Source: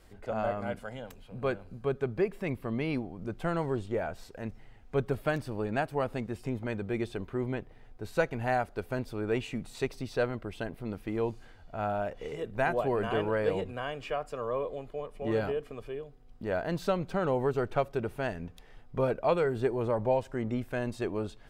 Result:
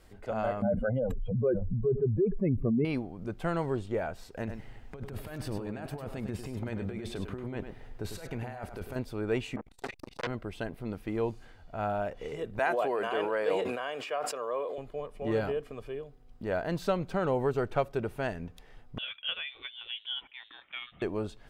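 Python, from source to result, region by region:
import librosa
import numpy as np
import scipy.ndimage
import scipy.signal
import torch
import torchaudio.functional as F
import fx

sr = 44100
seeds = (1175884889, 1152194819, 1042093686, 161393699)

y = fx.chain(x, sr, fx.spec_expand(power=2.6),
    fx.env_flatten(amount_pct=70), at=(0.62, 2.85))
y = fx.chain(y, sr, fx.over_compress(threshold_db=-38.0, ratio=-1.0),
    fx.echo_single(ms=101, db=-8.0), at=(4.37, 8.96))
y = fx.chain(y, sr, fx.doubler(ms=19.0, db=-6),
    fx.dispersion(late='highs', ms=66.0, hz=900.0),
    fx.transformer_sat(knee_hz=2400.0), at=(9.56, 10.27))
y = fx.chain(y, sr, fx.highpass(hz=390.0, slope=12),
    fx.sustainer(db_per_s=34.0), at=(12.59, 14.78))
y = fx.chain(y, sr, fx.highpass(hz=1100.0, slope=12),
    fx.freq_invert(carrier_hz=3900), at=(18.98, 21.02))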